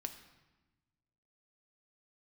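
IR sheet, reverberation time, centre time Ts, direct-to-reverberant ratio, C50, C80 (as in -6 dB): 1.1 s, 13 ms, 6.5 dB, 10.5 dB, 12.0 dB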